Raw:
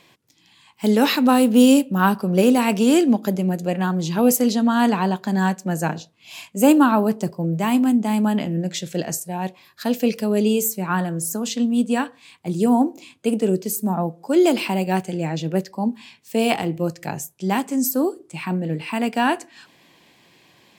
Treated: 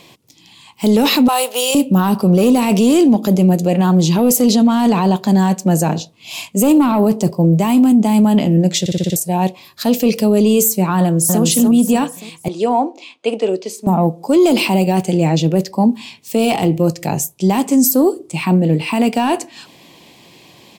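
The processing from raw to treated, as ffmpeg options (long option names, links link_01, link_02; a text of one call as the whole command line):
ffmpeg -i in.wav -filter_complex "[0:a]asettb=1/sr,asplit=3[link_01][link_02][link_03];[link_01]atrim=end=1.284[link_04];[link_02]atrim=start=1.28:end=1.75,asetpts=PTS-STARTPTS,afade=type=in:duration=0.004:curve=qsin,afade=type=out:start_time=0.466:duration=0.004:curve=qsin,highpass=frequency=650:width=0.5412,highpass=frequency=650:width=1.3066[link_05];[link_03]atrim=start=1.746[link_06];[link_04][link_05]acrossfade=duration=0.004:curve1=hsin:curve2=qsin[link_07];[link_07][link_06]acrossfade=duration=0.004:curve1=qsin:curve2=hsin,asplit=2[link_08][link_09];[link_09]afade=type=in:start_time=11:duration=0.01,afade=type=out:start_time=11.42:duration=0.01,aecho=0:1:290|580|870|1160|1450:0.794328|0.278015|0.0973052|0.0340568|0.0119199[link_10];[link_08][link_10]amix=inputs=2:normalize=0,asettb=1/sr,asplit=3[link_11][link_12][link_13];[link_11]atrim=end=12.484[link_14];[link_12]atrim=start=12.48:end=13.87,asetpts=PTS-STARTPTS,afade=type=in:duration=0.004:curve=qsin,afade=type=out:start_time=1.386:duration=0.004:curve=qsin,highpass=570,lowpass=3800[link_15];[link_13]atrim=start=13.866[link_16];[link_14][link_15]acrossfade=duration=0.004:curve1=hsin:curve2=qsin[link_17];[link_17][link_16]acrossfade=duration=0.004:curve1=qsin:curve2=hsin,asplit=7[link_18][link_19][link_20][link_21][link_22][link_23][link_24];[link_18]atrim=end=8.862[link_25];[link_19]atrim=start=8.798:end=8.862[link_26];[link_20]atrim=start=8.798:end=8.862[link_27];[link_21]atrim=start=8.798:end=8.862[link_28];[link_22]atrim=start=8.798:end=8.862[link_29];[link_23]atrim=start=8.798:end=8.862[link_30];[link_24]atrim=start=9.158[link_31];[link_25][link_26]acrossfade=duration=0.004:curve1=hsin:curve2=hsin[link_32];[link_32][link_27]acrossfade=duration=0.004:curve1=hsin:curve2=hsin[link_33];[link_33][link_28]acrossfade=duration=0.004:curve1=hsin:curve2=hsin[link_34];[link_34][link_29]acrossfade=duration=0.004:curve1=hsin:curve2=hsin[link_35];[link_35][link_30]acrossfade=duration=0.004:curve1=hsin:curve2=hsin[link_36];[link_36][link_31]acrossfade=duration=0.004:curve1=hsin:curve2=hsin,acontrast=62,alimiter=limit=-10.5dB:level=0:latency=1:release=20,equalizer=frequency=1600:width=2:gain=-10,volume=5dB" out.wav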